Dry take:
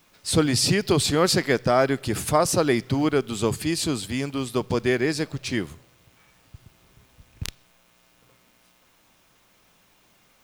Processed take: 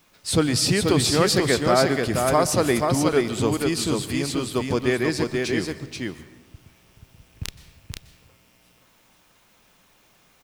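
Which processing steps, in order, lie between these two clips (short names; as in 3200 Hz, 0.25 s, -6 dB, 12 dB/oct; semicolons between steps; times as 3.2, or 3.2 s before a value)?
echo 0.483 s -4 dB; reverb RT60 1.2 s, pre-delay 0.117 s, DRR 15 dB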